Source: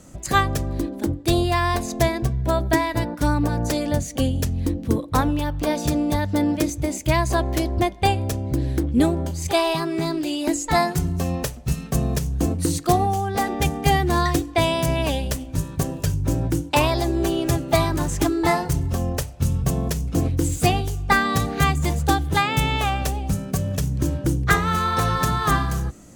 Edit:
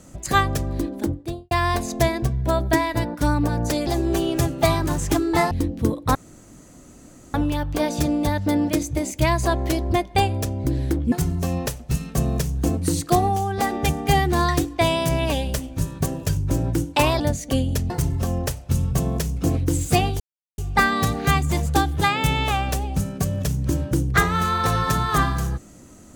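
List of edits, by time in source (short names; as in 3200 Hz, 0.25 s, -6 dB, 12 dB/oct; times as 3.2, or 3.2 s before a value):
0.99–1.51 studio fade out
3.87–4.57 swap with 16.97–18.61
5.21 insert room tone 1.19 s
8.99–10.89 cut
20.91 insert silence 0.38 s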